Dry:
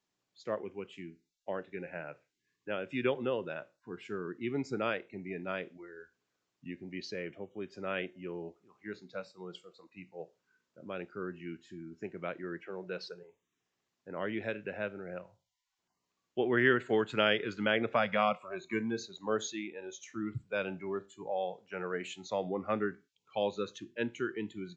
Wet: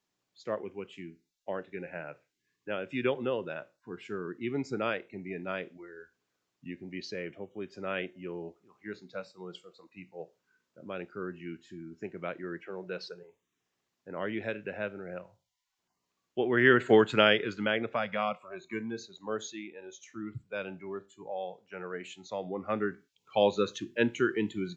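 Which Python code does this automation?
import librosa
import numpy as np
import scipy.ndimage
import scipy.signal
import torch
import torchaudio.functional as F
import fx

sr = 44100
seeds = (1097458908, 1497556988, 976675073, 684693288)

y = fx.gain(x, sr, db=fx.line((16.54, 1.5), (16.9, 9.0), (17.95, -2.5), (22.39, -2.5), (23.43, 7.5)))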